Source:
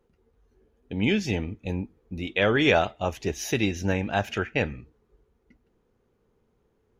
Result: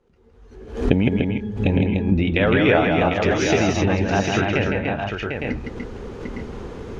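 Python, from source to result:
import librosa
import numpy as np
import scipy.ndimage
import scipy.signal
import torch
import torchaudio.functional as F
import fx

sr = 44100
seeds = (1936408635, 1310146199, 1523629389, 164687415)

y = fx.recorder_agc(x, sr, target_db=-13.0, rise_db_per_s=32.0, max_gain_db=30)
y = scipy.signal.sosfilt(scipy.signal.butter(2, 6800.0, 'lowpass', fs=sr, output='sos'), y)
y = fx.env_lowpass_down(y, sr, base_hz=2500.0, full_db=-20.5)
y = fx.octave_resonator(y, sr, note='G#', decay_s=0.2, at=(1.08, 1.64))
y = fx.echo_multitap(y, sr, ms=(161, 294, 319, 749, 860, 889), db=(-5.0, -5.0, -16.5, -7.0, -7.0, -11.5))
y = fx.pre_swell(y, sr, db_per_s=110.0)
y = y * librosa.db_to_amplitude(2.5)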